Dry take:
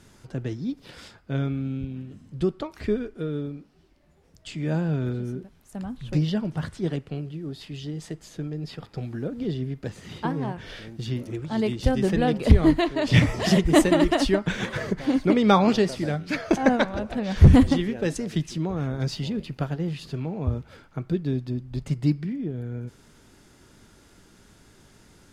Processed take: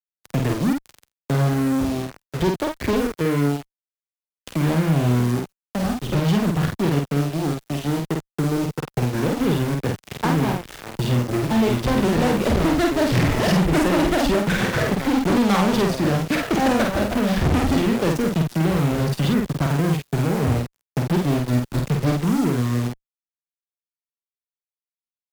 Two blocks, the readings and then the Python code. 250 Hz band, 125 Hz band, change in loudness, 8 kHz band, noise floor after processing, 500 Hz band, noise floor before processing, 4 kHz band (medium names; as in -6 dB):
+4.0 dB, +4.0 dB, +3.5 dB, +6.5 dB, under -85 dBFS, +4.0 dB, -56 dBFS, +4.0 dB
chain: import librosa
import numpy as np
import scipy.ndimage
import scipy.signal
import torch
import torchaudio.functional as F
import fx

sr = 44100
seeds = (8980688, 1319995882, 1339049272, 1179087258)

y = fx.high_shelf(x, sr, hz=4000.0, db=-10.5)
y = fx.quant_dither(y, sr, seeds[0], bits=8, dither='none')
y = fx.fuzz(y, sr, gain_db=30.0, gate_db=-36.0)
y = fx.doubler(y, sr, ms=49.0, db=-3.0)
y = fx.band_squash(y, sr, depth_pct=40)
y = F.gain(torch.from_numpy(y), -4.0).numpy()